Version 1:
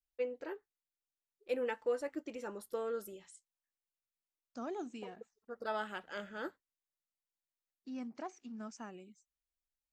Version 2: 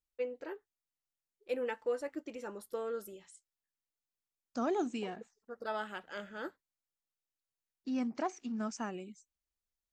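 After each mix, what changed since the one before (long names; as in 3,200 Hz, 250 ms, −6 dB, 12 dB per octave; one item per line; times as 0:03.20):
second voice +8.5 dB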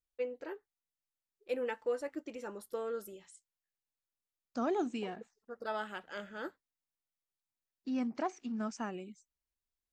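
second voice: add parametric band 6,700 Hz −4 dB 0.83 octaves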